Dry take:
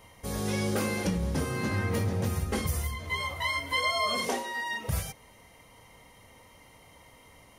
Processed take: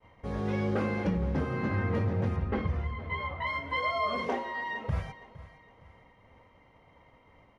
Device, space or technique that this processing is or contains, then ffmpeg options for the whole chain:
hearing-loss simulation: -filter_complex "[0:a]asettb=1/sr,asplit=3[link_01][link_02][link_03];[link_01]atrim=end=2.364[link_04];[link_02]atrim=start=2.36:end=3.47,asetpts=PTS-STARTPTS,afade=type=in:duration=0.004:curve=qsin,afade=type=out:start_time=1.106:duration=0.004:curve=qsin,lowpass=3600[link_05];[link_03]atrim=start=3.466[link_06];[link_04][link_05]acrossfade=duration=0.004:curve1=hsin:curve2=qsin[link_07];[link_07][link_06]acrossfade=duration=0.004:curve1=qsin:curve2=hsin,lowpass=2000,agate=range=-33dB:threshold=-52dB:ratio=3:detection=peak,aecho=1:1:462|924|1386:0.133|0.052|0.0203"

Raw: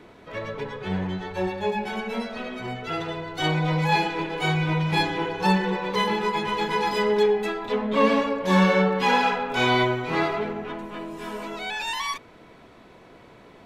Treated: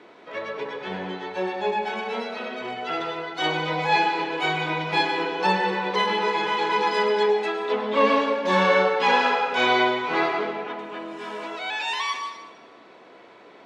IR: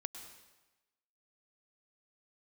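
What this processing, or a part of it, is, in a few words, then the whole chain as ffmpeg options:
supermarket ceiling speaker: -filter_complex "[0:a]asettb=1/sr,asplit=3[link_01][link_02][link_03];[link_01]atrim=end=6.214[link_04];[link_02]atrim=start=6.21:end=6.72,asetpts=PTS-STARTPTS,afade=type=in:duration=0.004:curve=qsin,afade=type=out:start_time=0.506:duration=0.004:curve=qsin,asplit=2[link_05][link_06];[link_06]adelay=49,volume=-5dB[link_07];[link_05][link_07]amix=inputs=2:normalize=0,atrim=end_sample=22491[link_08];[link_03]atrim=start=6.716[link_09];[link_04][link_08]acrossfade=duration=0.004:curve1=hsin:curve2=qsin[link_10];[link_10][link_09]acrossfade=duration=0.004:curve1=qsin:curve2=hsin,highpass=330,lowpass=5600[link_11];[1:a]atrim=start_sample=2205[link_12];[link_11][link_12]afir=irnorm=-1:irlink=0,volume=4.5dB"

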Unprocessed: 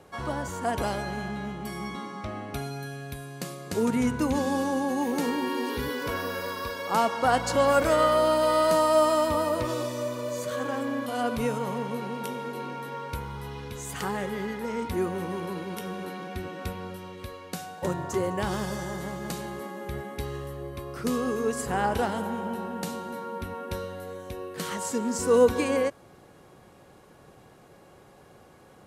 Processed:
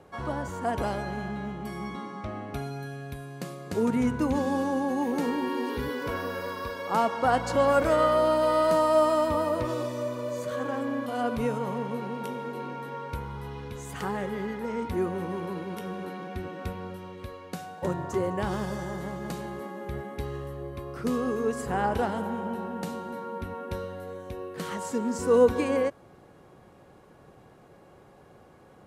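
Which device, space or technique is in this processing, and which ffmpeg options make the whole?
behind a face mask: -af "highshelf=frequency=2700:gain=-8"

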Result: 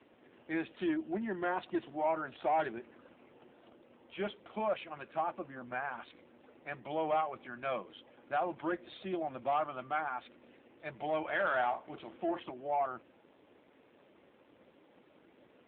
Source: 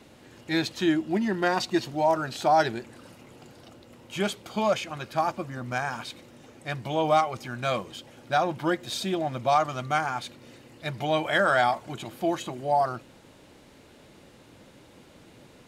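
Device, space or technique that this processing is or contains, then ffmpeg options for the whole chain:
telephone: -filter_complex "[0:a]asettb=1/sr,asplit=3[link_01][link_02][link_03];[link_01]atrim=end=11.284[link_04];[link_02]atrim=start=11.28:end=12.46,asetpts=PTS-STARTPTS,afade=type=in:duration=0.004:curve=qsin,afade=type=out:start_time=1.176:duration=0.004:curve=qsin,asplit=2[link_05][link_06];[link_06]adelay=42,volume=-10.5dB[link_07];[link_05][link_07]amix=inputs=2:normalize=0,atrim=end_sample=52038[link_08];[link_03]atrim=start=12.456[link_09];[link_04][link_08]acrossfade=duration=0.004:curve1=hsin:curve2=qsin[link_10];[link_10][link_09]acrossfade=duration=0.004:curve1=qsin:curve2=hsin,highpass=260,lowpass=3000,asoftclip=type=tanh:threshold=-18dB,volume=-6dB" -ar 8000 -c:a libopencore_amrnb -b:a 7400

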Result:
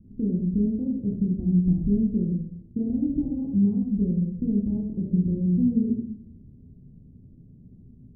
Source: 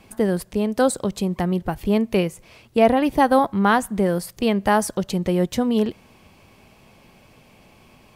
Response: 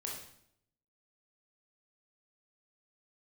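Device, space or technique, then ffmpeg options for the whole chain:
club heard from the street: -filter_complex "[0:a]alimiter=limit=-15dB:level=0:latency=1:release=207,lowpass=frequency=250:width=0.5412,lowpass=frequency=250:width=1.3066[link_01];[1:a]atrim=start_sample=2205[link_02];[link_01][link_02]afir=irnorm=-1:irlink=0,volume=6.5dB"

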